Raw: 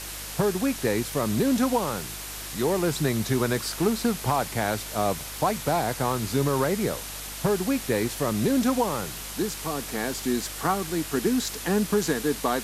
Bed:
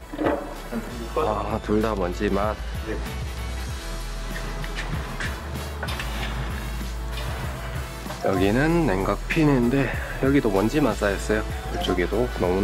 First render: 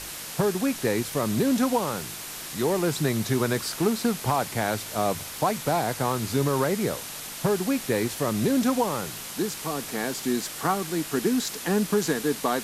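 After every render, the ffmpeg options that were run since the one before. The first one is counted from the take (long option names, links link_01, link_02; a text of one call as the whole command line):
ffmpeg -i in.wav -af "bandreject=frequency=50:width_type=h:width=4,bandreject=frequency=100:width_type=h:width=4" out.wav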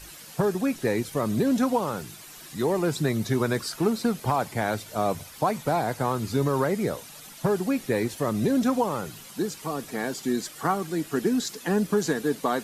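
ffmpeg -i in.wav -af "afftdn=noise_reduction=11:noise_floor=-37" out.wav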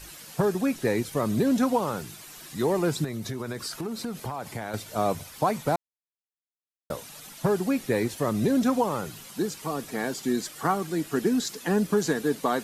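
ffmpeg -i in.wav -filter_complex "[0:a]asettb=1/sr,asplit=3[link_01][link_02][link_03];[link_01]atrim=end=3.044[link_04];[link_02]atrim=start=3.04:end=4.74,asetpts=PTS-STARTPTS,afade=type=in:duration=0.004:curve=qsin,afade=type=out:start_time=1.696:duration=0.004:curve=qsin,acompressor=threshold=-29dB:ratio=6:attack=3.2:release=140:knee=1:detection=peak[link_05];[link_03]atrim=start=4.736[link_06];[link_04][link_05]acrossfade=duration=0.004:curve1=hsin:curve2=qsin[link_07];[link_07][link_06]acrossfade=duration=0.004:curve1=qsin:curve2=hsin,asplit=3[link_08][link_09][link_10];[link_08]atrim=end=5.76,asetpts=PTS-STARTPTS,afade=type=out:start_time=5.756:duration=0.004:curve=hsin[link_11];[link_09]atrim=start=5.76:end=6.9,asetpts=PTS-STARTPTS,volume=0[link_12];[link_10]atrim=start=6.9,asetpts=PTS-STARTPTS,afade=type=in:duration=0.004:curve=hsin[link_13];[link_11][link_12][link_13]concat=n=3:v=0:a=1" out.wav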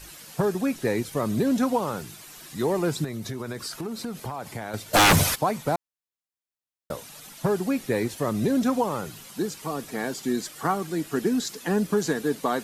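ffmpeg -i in.wav -filter_complex "[0:a]asplit=3[link_01][link_02][link_03];[link_01]afade=type=out:start_time=4.93:duration=0.02[link_04];[link_02]aeval=exprs='0.237*sin(PI/2*7.08*val(0)/0.237)':channel_layout=same,afade=type=in:start_time=4.93:duration=0.02,afade=type=out:start_time=5.34:duration=0.02[link_05];[link_03]afade=type=in:start_time=5.34:duration=0.02[link_06];[link_04][link_05][link_06]amix=inputs=3:normalize=0" out.wav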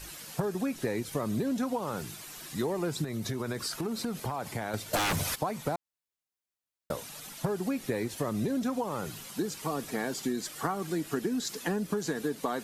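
ffmpeg -i in.wav -af "acompressor=threshold=-27dB:ratio=10" out.wav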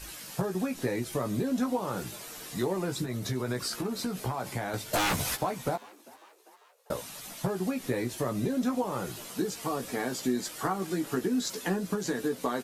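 ffmpeg -i in.wav -filter_complex "[0:a]asplit=2[link_01][link_02];[link_02]adelay=16,volume=-5dB[link_03];[link_01][link_03]amix=inputs=2:normalize=0,asplit=5[link_04][link_05][link_06][link_07][link_08];[link_05]adelay=397,afreqshift=100,volume=-23dB[link_09];[link_06]adelay=794,afreqshift=200,volume=-27.9dB[link_10];[link_07]adelay=1191,afreqshift=300,volume=-32.8dB[link_11];[link_08]adelay=1588,afreqshift=400,volume=-37.6dB[link_12];[link_04][link_09][link_10][link_11][link_12]amix=inputs=5:normalize=0" out.wav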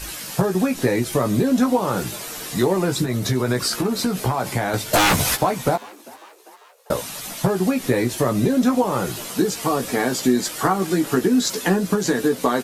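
ffmpeg -i in.wav -af "volume=11dB" out.wav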